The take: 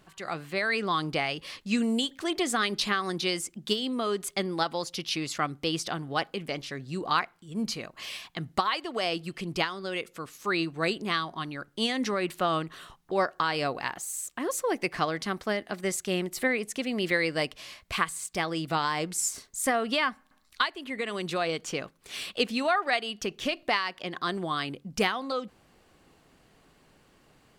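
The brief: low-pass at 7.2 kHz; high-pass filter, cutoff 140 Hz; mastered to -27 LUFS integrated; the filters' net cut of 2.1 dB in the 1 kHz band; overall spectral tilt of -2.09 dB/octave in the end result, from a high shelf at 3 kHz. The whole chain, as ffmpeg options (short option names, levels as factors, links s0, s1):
-af "highpass=140,lowpass=7200,equalizer=f=1000:t=o:g=-4,highshelf=f=3000:g=9,volume=1.19"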